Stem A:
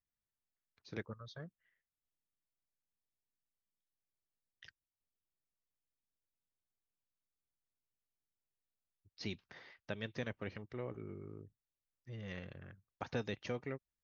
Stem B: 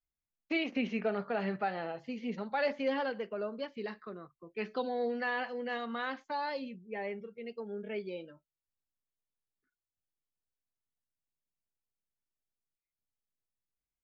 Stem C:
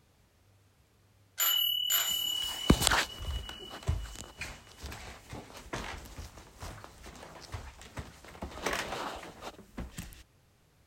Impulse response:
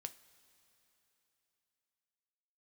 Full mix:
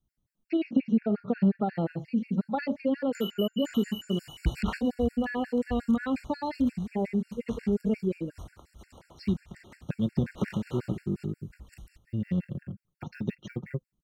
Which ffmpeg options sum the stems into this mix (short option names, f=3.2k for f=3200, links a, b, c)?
-filter_complex "[0:a]bandreject=f=510:w=16,aecho=1:1:5.6:0.47,acrusher=bits=8:mode=log:mix=0:aa=0.000001,volume=0.5dB[a];[1:a]volume=2.5dB,asplit=2[b][c];[2:a]acrossover=split=3700[d][e];[e]acompressor=threshold=-43dB:ratio=4:attack=1:release=60[f];[d][f]amix=inputs=2:normalize=0,equalizer=f=11k:w=3.2:g=3.5,adelay=1750,volume=-6.5dB[g];[c]apad=whole_len=619169[h];[a][h]sidechaincompress=threshold=-38dB:ratio=8:attack=16:release=504[i];[i][b]amix=inputs=2:normalize=0,equalizer=f=200:w=0.54:g=14,acompressor=threshold=-26dB:ratio=6,volume=0dB[j];[g][j]amix=inputs=2:normalize=0,lowshelf=f=280:g=10.5,afftfilt=real='re*gt(sin(2*PI*5.6*pts/sr)*(1-2*mod(floor(b*sr/1024/1400),2)),0)':imag='im*gt(sin(2*PI*5.6*pts/sr)*(1-2*mod(floor(b*sr/1024/1400),2)),0)':win_size=1024:overlap=0.75"